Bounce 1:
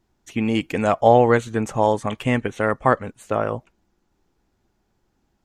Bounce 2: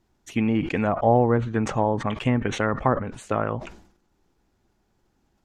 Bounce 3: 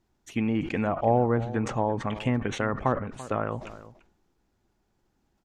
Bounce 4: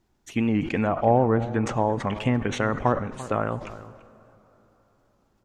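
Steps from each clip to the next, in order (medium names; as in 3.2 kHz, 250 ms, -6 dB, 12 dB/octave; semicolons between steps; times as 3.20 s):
low-pass that closes with the level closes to 900 Hz, closed at -14.5 dBFS; dynamic bell 530 Hz, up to -6 dB, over -27 dBFS, Q 1; decay stretcher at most 89 dB/s
echo from a far wall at 58 m, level -16 dB; trim -4 dB
plate-style reverb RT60 3.8 s, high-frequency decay 0.6×, DRR 18 dB; warped record 78 rpm, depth 100 cents; trim +3 dB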